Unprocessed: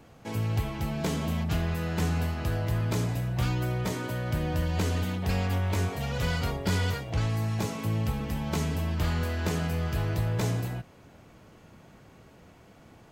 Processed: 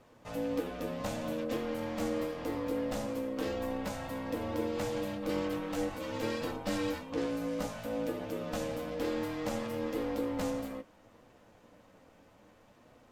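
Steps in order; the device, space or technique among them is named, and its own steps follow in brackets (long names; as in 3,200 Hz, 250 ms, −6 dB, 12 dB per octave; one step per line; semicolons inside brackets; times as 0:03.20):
alien voice (ring modulation 390 Hz; flanger 0.62 Hz, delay 8 ms, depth 3.6 ms, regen −41%)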